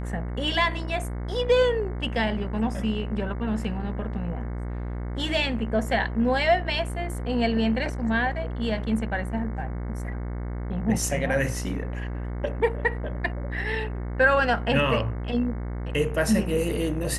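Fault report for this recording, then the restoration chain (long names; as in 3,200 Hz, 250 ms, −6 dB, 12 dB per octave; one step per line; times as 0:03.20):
mains buzz 60 Hz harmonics 37 −31 dBFS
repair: hum removal 60 Hz, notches 37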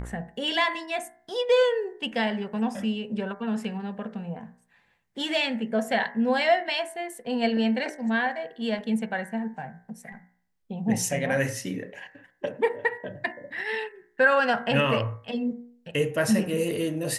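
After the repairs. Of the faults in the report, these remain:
none of them is left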